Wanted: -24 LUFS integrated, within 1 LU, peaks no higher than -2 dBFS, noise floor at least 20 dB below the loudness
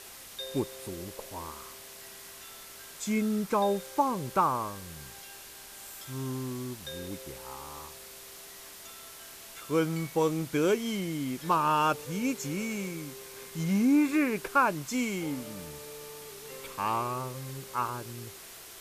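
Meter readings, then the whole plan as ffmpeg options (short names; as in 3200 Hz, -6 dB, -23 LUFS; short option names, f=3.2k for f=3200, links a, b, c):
noise floor -48 dBFS; noise floor target -51 dBFS; loudness -30.5 LUFS; peak -13.5 dBFS; loudness target -24.0 LUFS
-> -af "afftdn=nr=6:nf=-48"
-af "volume=6.5dB"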